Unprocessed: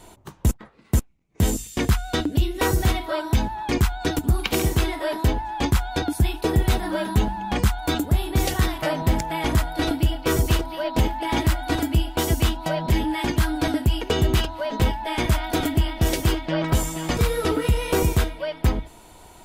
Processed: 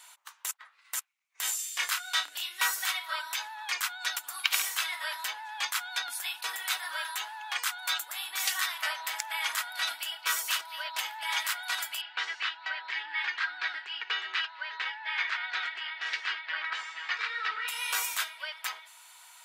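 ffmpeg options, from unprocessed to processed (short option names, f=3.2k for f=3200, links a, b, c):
-filter_complex "[0:a]asettb=1/sr,asplit=3[a][b][c];[a]atrim=end=1.564[d];[b]atrim=start=1.56:end=2.58,asetpts=PTS-STARTPTS,afade=t=in:d=0.004:c=qsin,afade=t=out:st=1.016:d=0.004:c=qsin,asplit=2[e][f];[f]adelay=28,volume=-4.5dB[g];[e][g]amix=inputs=2:normalize=0,atrim=end_sample=44982[h];[c]atrim=start=2.576[i];[d][h]acrossfade=d=0.004:c1=hsin:c2=qsin[j];[j][i]acrossfade=d=0.004:c1=qsin:c2=hsin,asettb=1/sr,asplit=3[k][l][m];[k]atrim=end=12.014[n];[l]atrim=start=12.01:end=17.68,asetpts=PTS-STARTPTS,afade=t=in:d=0.004:c=qsin,afade=t=out:st=5.666:d=0.004:c=qsin,highpass=f=280:w=0.5412,highpass=f=280:w=1.3066,equalizer=f=400:t=q:w=4:g=6,equalizer=f=620:t=q:w=4:g=-8,equalizer=f=1k:t=q:w=4:g=-4,equalizer=f=1.8k:t=q:w=4:g=5,equalizer=f=3.3k:t=q:w=4:g=-5,lowpass=f=4k:w=0.5412,lowpass=f=4k:w=1.3066[o];[m]atrim=start=17.676[p];[n][o]acrossfade=d=0.004:c1=hsin:c2=qsin[q];[q][p]acrossfade=d=0.004:c1=qsin:c2=hsin,highpass=f=1.2k:w=0.5412,highpass=f=1.2k:w=1.3066"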